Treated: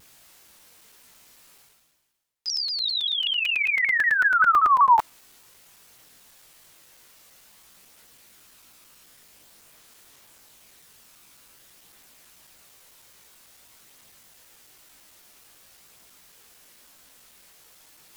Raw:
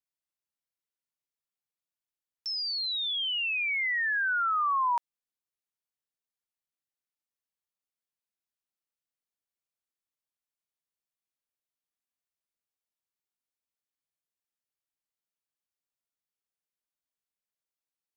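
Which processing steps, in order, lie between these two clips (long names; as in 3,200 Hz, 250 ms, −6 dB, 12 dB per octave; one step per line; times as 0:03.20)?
multi-voice chorus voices 2, 0.25 Hz, delay 18 ms, depth 2.2 ms
in parallel at −2 dB: brickwall limiter −29.5 dBFS, peak gain reduction 8 dB
on the sum: dynamic equaliser 1,000 Hz, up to +6 dB, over −37 dBFS, Q 0.82
reversed playback
upward compression, threshold −30 dBFS
reversed playback
regular buffer underruns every 0.11 s, samples 128, zero, from 0:00.48
pitch modulation by a square or saw wave saw down 5.2 Hz, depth 160 cents
level +3.5 dB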